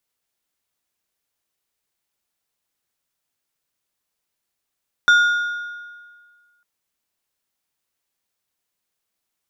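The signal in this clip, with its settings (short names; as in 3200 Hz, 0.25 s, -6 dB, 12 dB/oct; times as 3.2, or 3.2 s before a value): metal hit plate, lowest mode 1430 Hz, decay 1.72 s, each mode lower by 11 dB, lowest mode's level -8.5 dB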